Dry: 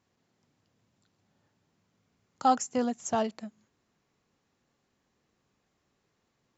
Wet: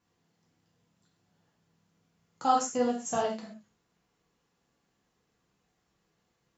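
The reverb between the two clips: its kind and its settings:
reverb whose tail is shaped and stops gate 160 ms falling, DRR −3.5 dB
level −5 dB

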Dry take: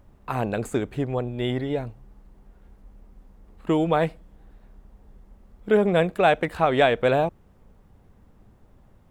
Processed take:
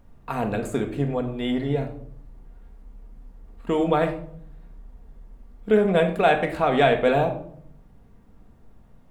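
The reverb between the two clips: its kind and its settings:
rectangular room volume 960 cubic metres, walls furnished, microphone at 1.7 metres
level −1.5 dB

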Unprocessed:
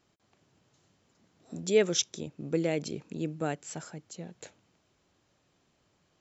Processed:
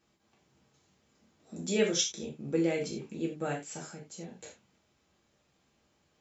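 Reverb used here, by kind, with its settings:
reverb whose tail is shaped and stops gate 120 ms falling, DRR −3 dB
level −5 dB

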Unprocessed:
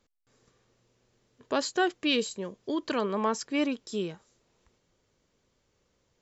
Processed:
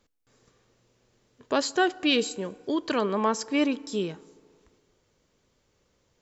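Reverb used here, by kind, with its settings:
feedback delay network reverb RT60 2.2 s, low-frequency decay 0.75×, high-frequency decay 0.45×, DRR 19.5 dB
level +3 dB

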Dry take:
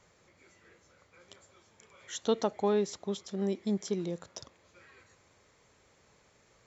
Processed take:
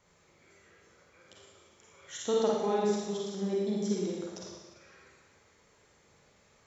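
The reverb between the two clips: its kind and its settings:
four-comb reverb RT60 1.3 s, DRR −4 dB
level −4.5 dB

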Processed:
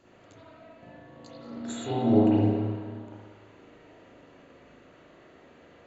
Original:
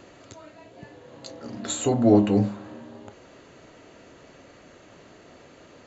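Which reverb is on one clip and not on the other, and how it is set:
spring reverb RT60 1.6 s, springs 38/55 ms, chirp 50 ms, DRR −9.5 dB
level −14 dB

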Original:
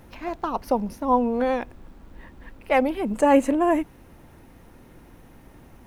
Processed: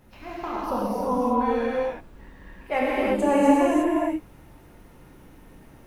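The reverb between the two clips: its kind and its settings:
reverb whose tail is shaped and stops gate 390 ms flat, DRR −8 dB
level −8.5 dB

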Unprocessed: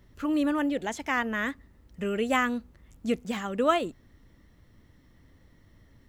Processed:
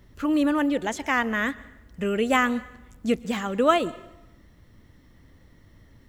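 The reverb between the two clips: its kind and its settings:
dense smooth reverb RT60 0.93 s, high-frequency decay 0.9×, pre-delay 105 ms, DRR 19.5 dB
level +4 dB

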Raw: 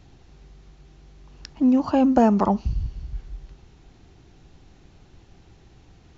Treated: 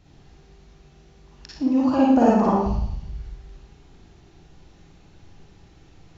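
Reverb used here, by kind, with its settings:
four-comb reverb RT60 0.75 s, DRR −5.5 dB
level −5 dB

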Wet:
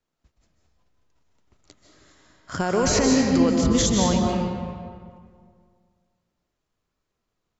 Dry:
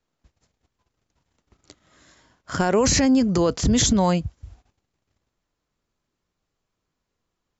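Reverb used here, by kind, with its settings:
comb and all-pass reverb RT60 2 s, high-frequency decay 0.65×, pre-delay 110 ms, DRR −0.5 dB
level −3.5 dB

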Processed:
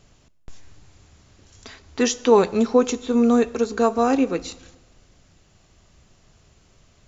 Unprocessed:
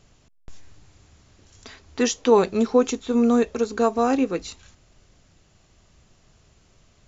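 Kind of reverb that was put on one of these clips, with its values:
dense smooth reverb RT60 1.2 s, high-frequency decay 0.75×, DRR 17 dB
level +1.5 dB

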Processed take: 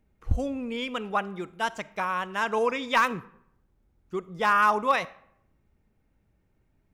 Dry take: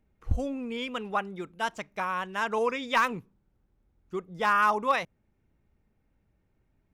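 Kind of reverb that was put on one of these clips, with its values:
comb and all-pass reverb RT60 0.73 s, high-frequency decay 0.65×, pre-delay 10 ms, DRR 18.5 dB
level +2 dB

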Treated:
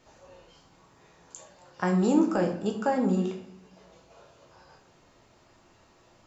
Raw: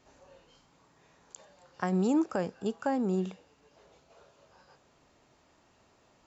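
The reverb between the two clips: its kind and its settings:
rectangular room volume 82 cubic metres, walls mixed, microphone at 0.7 metres
level +2.5 dB

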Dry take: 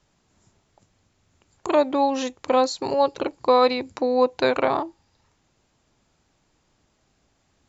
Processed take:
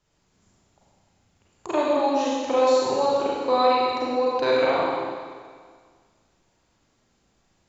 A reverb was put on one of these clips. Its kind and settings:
four-comb reverb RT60 1.8 s, combs from 33 ms, DRR −6 dB
level −7 dB

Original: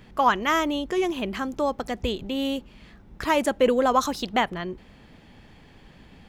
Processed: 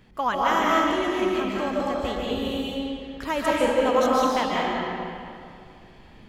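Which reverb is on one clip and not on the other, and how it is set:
comb and all-pass reverb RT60 2.4 s, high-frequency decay 0.75×, pre-delay 110 ms, DRR −5.5 dB
level −5.5 dB

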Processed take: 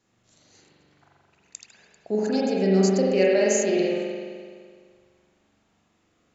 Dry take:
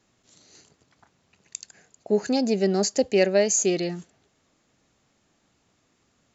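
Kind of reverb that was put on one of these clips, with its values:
spring reverb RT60 1.9 s, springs 42 ms, chirp 65 ms, DRR −5 dB
level −5 dB

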